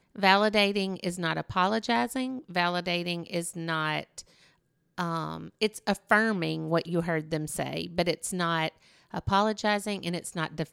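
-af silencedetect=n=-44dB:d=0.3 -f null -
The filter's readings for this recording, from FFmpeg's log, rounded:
silence_start: 4.21
silence_end: 4.98 | silence_duration: 0.77
silence_start: 8.69
silence_end: 9.13 | silence_duration: 0.44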